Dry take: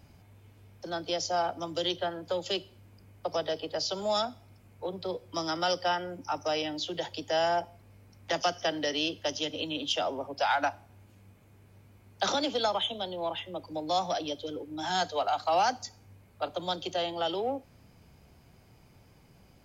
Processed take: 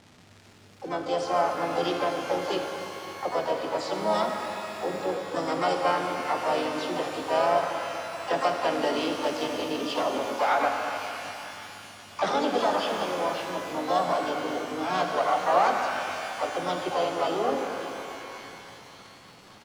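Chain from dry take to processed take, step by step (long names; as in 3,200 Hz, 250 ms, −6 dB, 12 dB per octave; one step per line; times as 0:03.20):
high-pass filter 160 Hz 12 dB per octave
high-shelf EQ 2,100 Hz −11.5 dB
pitch-shifted copies added −3 semitones −7 dB, +7 semitones −5 dB
surface crackle 470 per second −43 dBFS
high-frequency loss of the air 66 metres
on a send: delay with a high-pass on its return 566 ms, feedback 84%, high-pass 1,700 Hz, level −18.5 dB
on the sum: reverb with rising layers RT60 3.2 s, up +12 semitones, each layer −8 dB, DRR 3 dB
level +3 dB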